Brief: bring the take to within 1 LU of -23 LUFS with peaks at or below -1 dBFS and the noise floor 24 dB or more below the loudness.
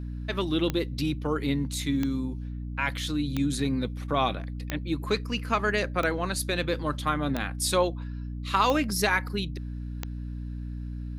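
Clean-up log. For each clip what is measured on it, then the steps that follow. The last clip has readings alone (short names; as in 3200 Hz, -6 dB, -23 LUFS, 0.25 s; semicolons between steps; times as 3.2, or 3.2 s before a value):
clicks 8; hum 60 Hz; harmonics up to 300 Hz; hum level -32 dBFS; loudness -28.5 LUFS; peak -10.0 dBFS; loudness target -23.0 LUFS
-> de-click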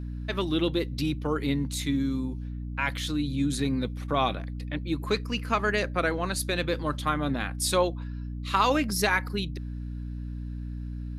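clicks 0; hum 60 Hz; harmonics up to 300 Hz; hum level -32 dBFS
-> notches 60/120/180/240/300 Hz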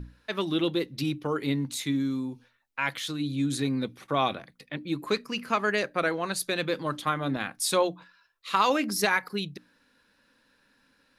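hum none; loudness -28.5 LUFS; peak -10.5 dBFS; loudness target -23.0 LUFS
-> gain +5.5 dB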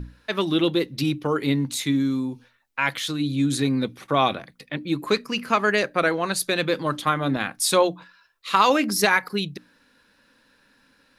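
loudness -23.0 LUFS; peak -5.0 dBFS; noise floor -62 dBFS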